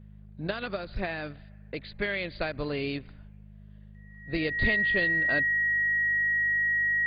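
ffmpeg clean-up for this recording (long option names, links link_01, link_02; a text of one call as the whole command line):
ffmpeg -i in.wav -af "bandreject=frequency=51.4:width_type=h:width=4,bandreject=frequency=102.8:width_type=h:width=4,bandreject=frequency=154.2:width_type=h:width=4,bandreject=frequency=205.6:width_type=h:width=4,bandreject=frequency=1900:width=30" out.wav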